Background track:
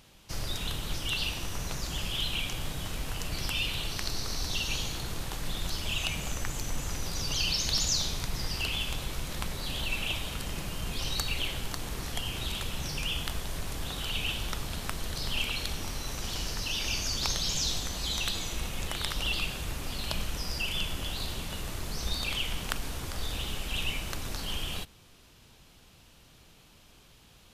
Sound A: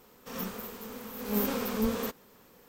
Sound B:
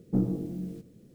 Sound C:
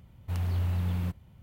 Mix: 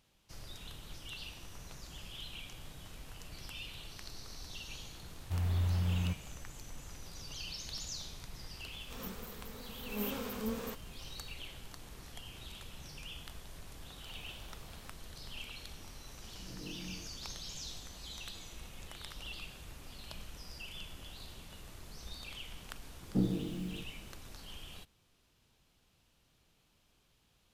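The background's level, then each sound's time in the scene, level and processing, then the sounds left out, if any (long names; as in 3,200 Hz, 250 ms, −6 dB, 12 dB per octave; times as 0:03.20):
background track −14.5 dB
0:05.02: mix in C −3 dB
0:08.64: mix in A −8.5 dB
0:13.78: mix in C −13.5 dB + high-pass filter 360 Hz 24 dB per octave
0:16.26: mix in B −14.5 dB + compressor whose output falls as the input rises −34 dBFS
0:23.02: mix in B −4.5 dB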